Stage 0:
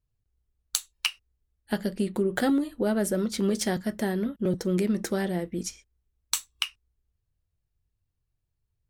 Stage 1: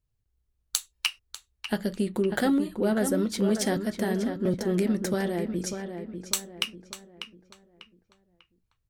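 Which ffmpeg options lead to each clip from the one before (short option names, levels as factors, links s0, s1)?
-filter_complex "[0:a]asplit=2[s0][s1];[s1]adelay=595,lowpass=f=3000:p=1,volume=0.422,asplit=2[s2][s3];[s3]adelay=595,lowpass=f=3000:p=1,volume=0.4,asplit=2[s4][s5];[s5]adelay=595,lowpass=f=3000:p=1,volume=0.4,asplit=2[s6][s7];[s7]adelay=595,lowpass=f=3000:p=1,volume=0.4,asplit=2[s8][s9];[s9]adelay=595,lowpass=f=3000:p=1,volume=0.4[s10];[s0][s2][s4][s6][s8][s10]amix=inputs=6:normalize=0"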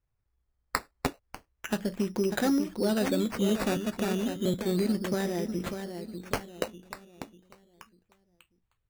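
-af "acrusher=samples=11:mix=1:aa=0.000001:lfo=1:lforange=6.6:lforate=0.32,volume=0.794"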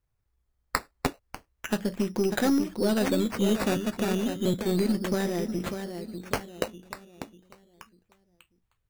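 -af "aeval=exprs='0.282*(cos(1*acos(clip(val(0)/0.282,-1,1)))-cos(1*PI/2))+0.00891*(cos(8*acos(clip(val(0)/0.282,-1,1)))-cos(8*PI/2))':c=same,volume=1.26"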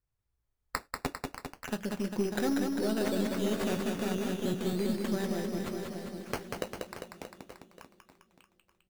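-af "aecho=1:1:190|399|628.9|881.8|1160:0.631|0.398|0.251|0.158|0.1,volume=0.447"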